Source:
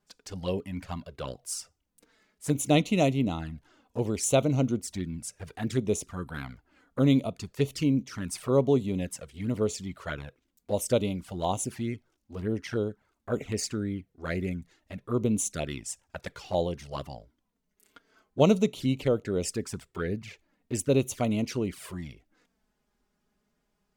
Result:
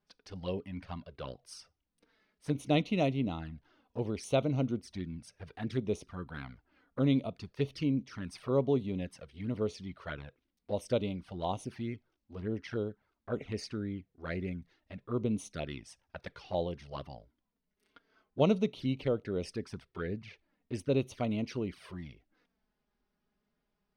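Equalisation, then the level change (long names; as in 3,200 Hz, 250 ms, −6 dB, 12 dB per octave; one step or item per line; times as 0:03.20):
Savitzky-Golay smoothing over 15 samples
−5.5 dB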